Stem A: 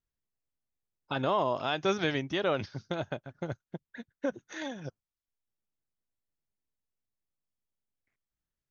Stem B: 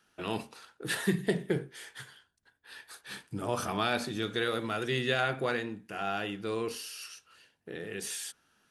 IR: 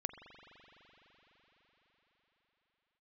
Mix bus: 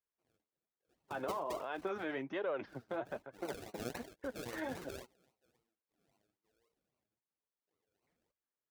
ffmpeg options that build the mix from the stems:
-filter_complex "[0:a]acrossover=split=260 2200:gain=0.112 1 0.0891[a][b][c];[a][b][c]amix=inputs=3:normalize=0,alimiter=level_in=4.5dB:limit=-24dB:level=0:latency=1:release=55,volume=-4.5dB,volume=2.5dB,asplit=2[d][e];[1:a]highpass=390,acrusher=samples=36:mix=1:aa=0.000001:lfo=1:lforange=21.6:lforate=3.7,adynamicequalizer=threshold=0.00355:dfrequency=3000:dqfactor=0.7:tfrequency=3000:tqfactor=0.7:attack=5:release=100:ratio=0.375:range=2:mode=boostabove:tftype=highshelf,volume=-9.5dB[f];[e]apad=whole_len=384040[g];[f][g]sidechaingate=range=-32dB:threshold=-58dB:ratio=16:detection=peak[h];[d][h]amix=inputs=2:normalize=0,highpass=45,flanger=delay=1.8:depth=7.9:regen=35:speed=1.2:shape=sinusoidal"

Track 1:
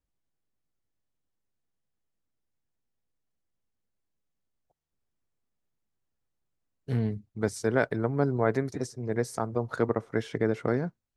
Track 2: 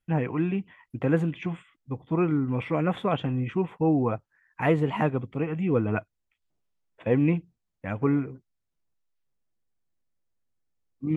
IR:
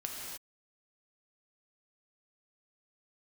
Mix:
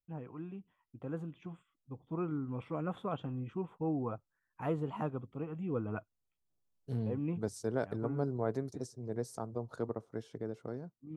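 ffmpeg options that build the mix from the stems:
-filter_complex "[0:a]volume=-14.5dB,asplit=2[a][b];[1:a]adynamicequalizer=threshold=0.00501:dfrequency=1300:dqfactor=2.1:tfrequency=1300:tqfactor=2.1:attack=5:release=100:ratio=0.375:range=3.5:mode=boostabove:tftype=bell,volume=-9dB,afade=t=in:st=6.42:d=0.61:silence=0.354813[c];[b]apad=whole_len=492491[d];[c][d]sidechaincompress=threshold=-55dB:ratio=4:attack=46:release=760[e];[a][e]amix=inputs=2:normalize=0,dynaudnorm=f=290:g=11:m=6.5dB,equalizer=f=2k:t=o:w=1:g=-12.5"

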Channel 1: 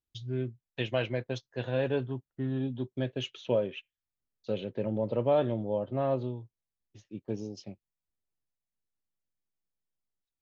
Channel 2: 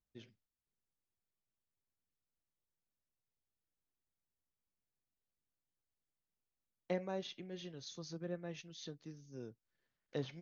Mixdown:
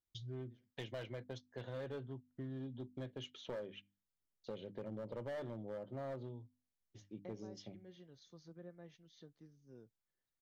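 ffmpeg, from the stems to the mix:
-filter_complex "[0:a]asoftclip=type=hard:threshold=-25.5dB,bandreject=f=50:t=h:w=6,bandreject=f=100:t=h:w=6,bandreject=f=150:t=h:w=6,bandreject=f=200:t=h:w=6,bandreject=f=250:t=h:w=6,bandreject=f=300:t=h:w=6,volume=-3.5dB[a];[1:a]lowpass=f=2.6k:p=1,adelay=350,volume=-9.5dB[b];[a][b]amix=inputs=2:normalize=0,bandreject=f=2.6k:w=7.9,acompressor=threshold=-47dB:ratio=2.5"

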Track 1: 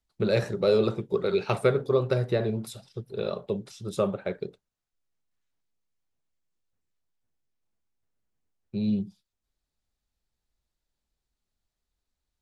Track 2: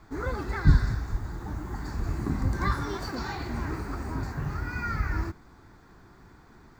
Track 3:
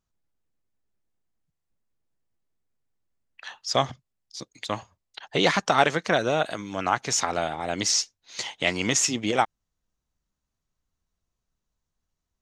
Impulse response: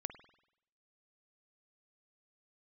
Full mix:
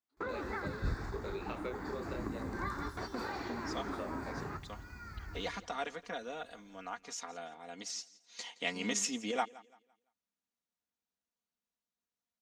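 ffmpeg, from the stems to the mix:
-filter_complex "[0:a]flanger=delay=22.5:depth=3.9:speed=0.25,aemphasis=mode=production:type=riaa,volume=-8dB,asplit=2[a][b];[1:a]bass=f=250:g=1,treble=f=4k:g=8,volume=0dB,asplit=2[c][d];[d]volume=-18dB[e];[2:a]highpass=150,aecho=1:1:4.2:0.69,volume=-12.5dB,afade=t=in:st=8.02:d=0.54:silence=0.421697,asplit=2[f][g];[g]volume=-20.5dB[h];[b]apad=whole_len=299536[i];[c][i]sidechaingate=range=-46dB:threshold=-56dB:ratio=16:detection=peak[j];[a][j]amix=inputs=2:normalize=0,highpass=210,lowpass=2.6k,acompressor=threshold=-36dB:ratio=6,volume=0dB[k];[e][h]amix=inputs=2:normalize=0,aecho=0:1:170|340|510|680:1|0.31|0.0961|0.0298[l];[f][k][l]amix=inputs=3:normalize=0,equalizer=f=140:t=o:w=0.26:g=-9"

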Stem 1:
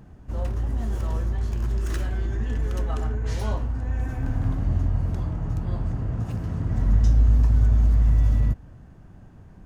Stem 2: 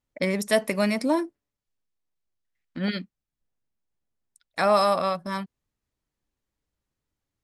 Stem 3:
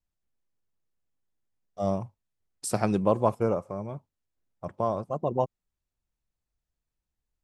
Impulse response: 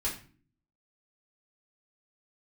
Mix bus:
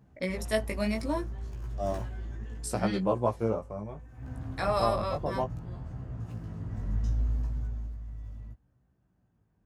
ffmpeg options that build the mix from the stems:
-filter_complex "[0:a]highpass=52,volume=2.5dB,afade=t=out:st=2.31:d=0.67:silence=0.298538,afade=t=in:st=4.11:d=0.21:silence=0.266073,afade=t=out:st=7.26:d=0.72:silence=0.251189[a];[1:a]volume=-5dB[b];[2:a]volume=-1dB[c];[a][b][c]amix=inputs=3:normalize=0,flanger=delay=15.5:depth=3.6:speed=0.67"

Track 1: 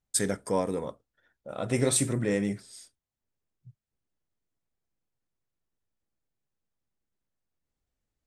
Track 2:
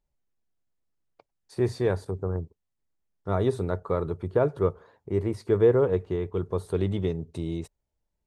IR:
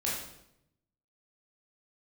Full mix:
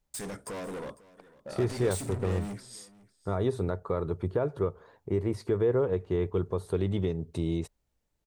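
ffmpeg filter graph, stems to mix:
-filter_complex "[0:a]alimiter=limit=-21dB:level=0:latency=1:release=103,asoftclip=type=hard:threshold=-37.5dB,volume=2dB,asplit=2[a][b];[b]volume=-20.5dB[c];[1:a]alimiter=limit=-19dB:level=0:latency=1:release=278,volume=1.5dB[d];[c]aecho=0:1:500:1[e];[a][d][e]amix=inputs=3:normalize=0"

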